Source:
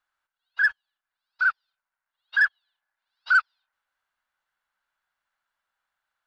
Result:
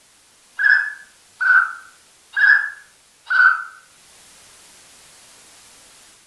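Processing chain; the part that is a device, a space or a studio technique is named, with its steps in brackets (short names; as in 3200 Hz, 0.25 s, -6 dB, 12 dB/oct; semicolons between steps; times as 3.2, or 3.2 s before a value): filmed off a television (BPF 180–6200 Hz; bell 860 Hz +10 dB 0.51 oct; reverb RT60 0.60 s, pre-delay 53 ms, DRR -7 dB; white noise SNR 28 dB; AGC gain up to 6.5 dB; gain -1 dB; AAC 64 kbps 24000 Hz)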